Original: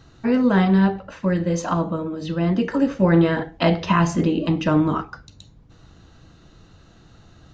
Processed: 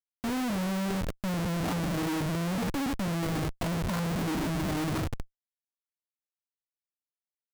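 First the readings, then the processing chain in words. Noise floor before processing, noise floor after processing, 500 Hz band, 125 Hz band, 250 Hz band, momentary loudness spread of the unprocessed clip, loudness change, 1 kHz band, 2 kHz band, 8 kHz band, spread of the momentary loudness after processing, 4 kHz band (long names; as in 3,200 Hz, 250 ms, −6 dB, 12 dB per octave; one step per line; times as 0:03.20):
−51 dBFS, below −85 dBFS, −12.5 dB, −9.0 dB, −11.5 dB, 9 LU, −10.5 dB, −10.0 dB, −8.5 dB, can't be measured, 3 LU, −4.5 dB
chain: adaptive Wiener filter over 41 samples
noise reduction from a noise print of the clip's start 6 dB
parametric band 240 Hz +3 dB 0.47 octaves
reversed playback
downward compressor 20 to 1, threshold −25 dBFS, peak gain reduction 14.5 dB
reversed playback
treble cut that deepens with the level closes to 1,500 Hz, closed at −27.5 dBFS
brickwall limiter −28 dBFS, peak gain reduction 10.5 dB
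dynamic equaliser 110 Hz, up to +6 dB, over −54 dBFS, Q 2
comparator with hysteresis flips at −43 dBFS
level +6 dB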